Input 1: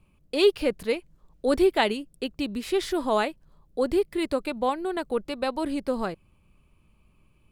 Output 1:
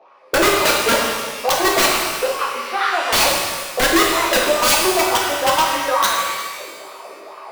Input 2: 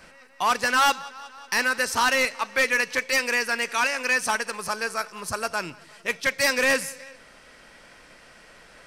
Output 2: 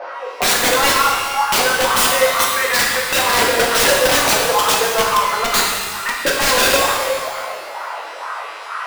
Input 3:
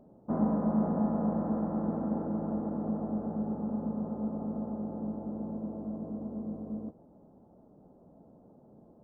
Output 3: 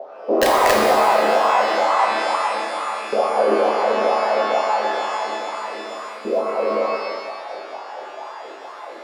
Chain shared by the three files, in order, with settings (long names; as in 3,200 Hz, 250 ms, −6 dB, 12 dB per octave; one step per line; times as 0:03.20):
variable-slope delta modulation 32 kbit/s
LFO wah 2.2 Hz 350–1,200 Hz, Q 4.3
reverb reduction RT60 0.53 s
in parallel at −6 dB: soft clipping −30.5 dBFS
on the sum: mains-hum notches 50/100/150/200/250/300/350 Hz
auto-filter high-pass saw up 0.32 Hz 460–1,500 Hz
wrap-around overflow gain 26 dB
reversed playback
upward compression, threshold −52 dBFS
reversed playback
boost into a limiter +34.5 dB
reverb with rising layers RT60 1.5 s, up +12 semitones, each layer −8 dB, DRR −2 dB
level −11.5 dB